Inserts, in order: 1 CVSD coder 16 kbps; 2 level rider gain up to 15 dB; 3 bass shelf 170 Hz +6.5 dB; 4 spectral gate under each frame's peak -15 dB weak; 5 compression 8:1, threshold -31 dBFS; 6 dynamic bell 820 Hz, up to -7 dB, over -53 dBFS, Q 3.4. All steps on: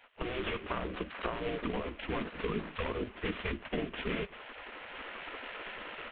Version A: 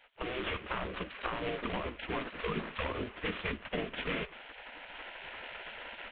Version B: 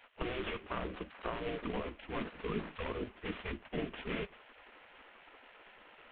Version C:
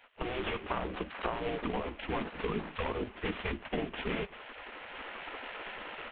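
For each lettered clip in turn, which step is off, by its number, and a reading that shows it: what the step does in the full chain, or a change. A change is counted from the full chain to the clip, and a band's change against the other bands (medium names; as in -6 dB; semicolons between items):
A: 3, 250 Hz band -3.0 dB; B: 2, momentary loudness spread change +11 LU; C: 6, 1 kHz band +2.5 dB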